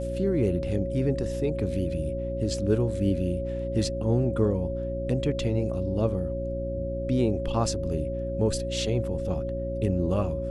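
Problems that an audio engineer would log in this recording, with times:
mains hum 60 Hz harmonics 6 −33 dBFS
whistle 550 Hz −31 dBFS

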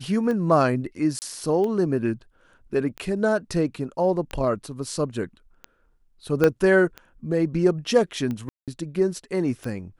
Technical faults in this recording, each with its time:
scratch tick 45 rpm −19 dBFS
0:01.19–0:01.22: drop-out 29 ms
0:06.44: click −7 dBFS
0:08.49–0:08.68: drop-out 187 ms

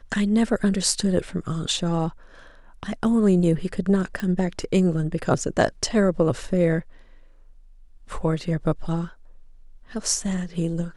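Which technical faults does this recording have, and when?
0:04.20: click −16 dBFS

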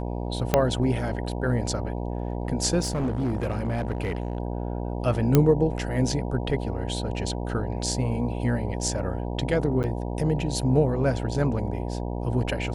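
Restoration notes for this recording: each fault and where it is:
mains buzz 60 Hz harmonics 16 −30 dBFS
0:00.54: click −5 dBFS
0:02.82–0:04.37: clipping −22 dBFS
0:05.35: click −5 dBFS
0:09.83–0:09.84: drop-out 9 ms

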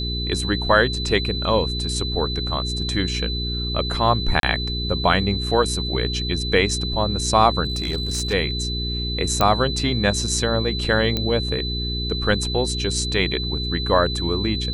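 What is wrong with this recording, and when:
mains hum 60 Hz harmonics 7 −27 dBFS
whistle 4,000 Hz −27 dBFS
0:04.40–0:04.43: drop-out 32 ms
0:07.64–0:08.34: clipping −19 dBFS
0:09.41: click −4 dBFS
0:11.17: click −9 dBFS

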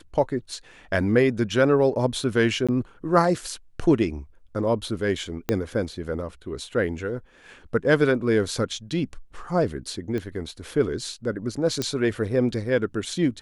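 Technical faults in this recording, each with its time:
0:02.67–0:02.69: drop-out 16 ms
0:05.49: click −10 dBFS
0:10.18: click −19 dBFS
0:11.82: click −12 dBFS

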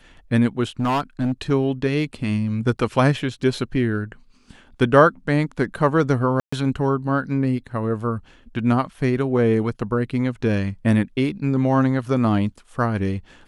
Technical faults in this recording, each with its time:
0:00.80–0:01.52: clipping −17 dBFS
0:06.40–0:06.53: drop-out 125 ms

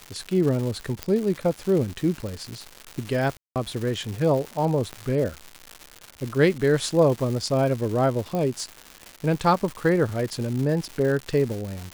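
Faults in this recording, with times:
surface crackle 290 per second −29 dBFS
0:01.03: click −11 dBFS
0:03.37–0:03.56: drop-out 188 ms
0:04.93: click −19 dBFS
0:08.35: click −16 dBFS

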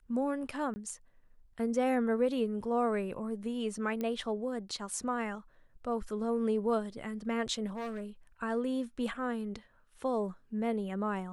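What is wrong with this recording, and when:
0:00.74–0:00.76: drop-out 20 ms
0:04.01: click −23 dBFS
0:07.66–0:08.04: clipping −34 dBFS

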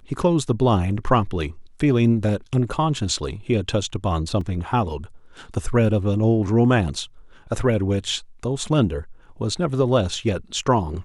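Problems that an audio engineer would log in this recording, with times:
0:04.41: drop-out 2.7 ms

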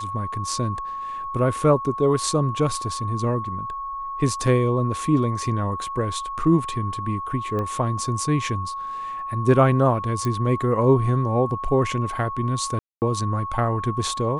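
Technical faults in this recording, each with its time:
whistle 1,100 Hz −28 dBFS
0:07.59: click −18 dBFS
0:10.25: click
0:12.79–0:13.02: drop-out 229 ms

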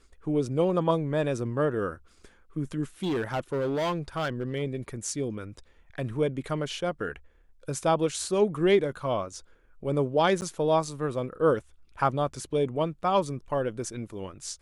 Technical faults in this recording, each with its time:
0:03.03–0:04.63: clipping −24.5 dBFS
0:10.41–0:10.42: drop-out 9.8 ms

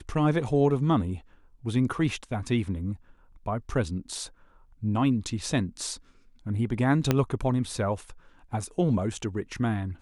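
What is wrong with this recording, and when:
0:07.11: click −8 dBFS

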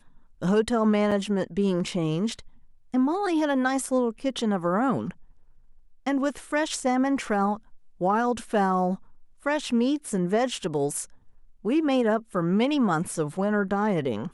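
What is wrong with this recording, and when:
0:01.11–0:01.12: drop-out 5.8 ms

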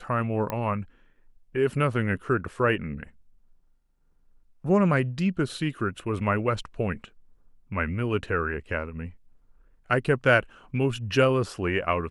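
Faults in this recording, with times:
0:00.50: click −16 dBFS

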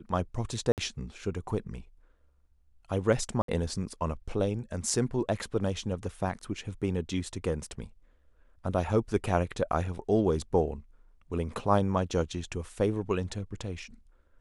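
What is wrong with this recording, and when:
0:00.72–0:00.78: drop-out 58 ms
0:03.42–0:03.48: drop-out 63 ms

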